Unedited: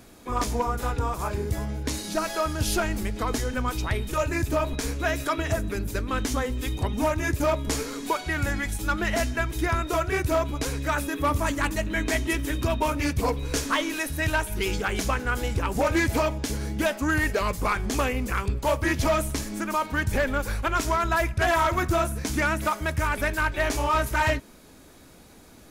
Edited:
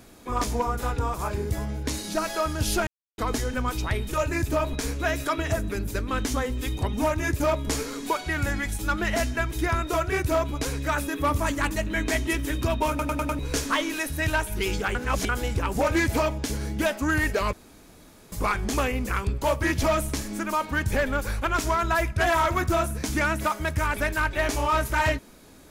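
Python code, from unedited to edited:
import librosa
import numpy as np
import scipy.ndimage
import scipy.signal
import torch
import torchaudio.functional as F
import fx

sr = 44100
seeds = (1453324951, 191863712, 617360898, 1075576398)

y = fx.edit(x, sr, fx.silence(start_s=2.87, length_s=0.31),
    fx.stutter_over(start_s=12.89, slice_s=0.1, count=5),
    fx.reverse_span(start_s=14.95, length_s=0.34),
    fx.insert_room_tone(at_s=17.53, length_s=0.79), tone=tone)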